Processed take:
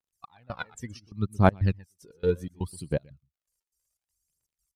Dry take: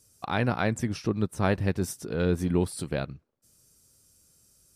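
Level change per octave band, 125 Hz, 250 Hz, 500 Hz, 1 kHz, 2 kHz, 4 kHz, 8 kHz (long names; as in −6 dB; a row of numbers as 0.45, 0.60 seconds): 0.0, −3.5, −0.5, +0.5, −4.0, −7.0, −9.0 decibels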